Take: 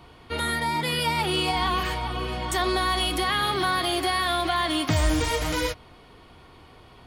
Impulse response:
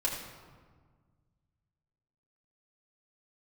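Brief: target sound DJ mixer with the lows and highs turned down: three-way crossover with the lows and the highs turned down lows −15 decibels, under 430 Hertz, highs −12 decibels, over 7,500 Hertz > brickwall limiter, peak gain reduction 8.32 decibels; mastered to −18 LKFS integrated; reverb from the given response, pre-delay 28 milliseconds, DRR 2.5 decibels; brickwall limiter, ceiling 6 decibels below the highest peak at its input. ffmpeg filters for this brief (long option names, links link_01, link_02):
-filter_complex "[0:a]alimiter=limit=-17.5dB:level=0:latency=1,asplit=2[link_01][link_02];[1:a]atrim=start_sample=2205,adelay=28[link_03];[link_02][link_03]afir=irnorm=-1:irlink=0,volume=-8.5dB[link_04];[link_01][link_04]amix=inputs=2:normalize=0,acrossover=split=430 7500:gain=0.178 1 0.251[link_05][link_06][link_07];[link_05][link_06][link_07]amix=inputs=3:normalize=0,volume=12.5dB,alimiter=limit=-10dB:level=0:latency=1"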